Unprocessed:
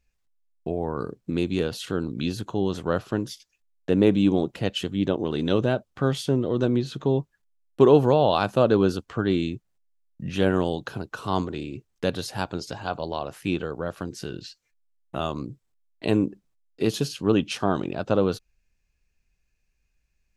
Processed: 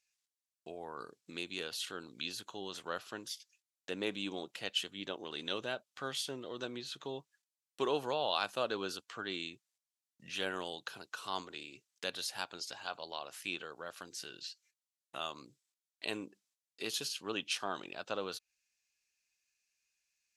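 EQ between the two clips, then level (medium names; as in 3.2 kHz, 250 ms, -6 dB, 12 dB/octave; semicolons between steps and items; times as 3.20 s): dynamic bell 6.4 kHz, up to -7 dB, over -50 dBFS, Q 0.72; band-pass filter 6.6 kHz, Q 0.72; +3.5 dB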